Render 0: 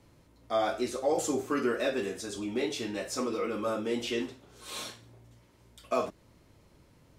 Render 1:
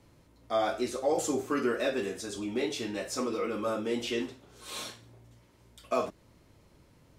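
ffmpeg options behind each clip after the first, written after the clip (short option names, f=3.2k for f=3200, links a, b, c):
-af anull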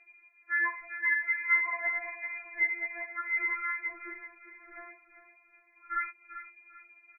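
-af "aecho=1:1:393|786|1179:0.251|0.0728|0.0211,lowpass=f=2.1k:t=q:w=0.5098,lowpass=f=2.1k:t=q:w=0.6013,lowpass=f=2.1k:t=q:w=0.9,lowpass=f=2.1k:t=q:w=2.563,afreqshift=-2500,afftfilt=real='re*4*eq(mod(b,16),0)':imag='im*4*eq(mod(b,16),0)':win_size=2048:overlap=0.75,volume=2dB"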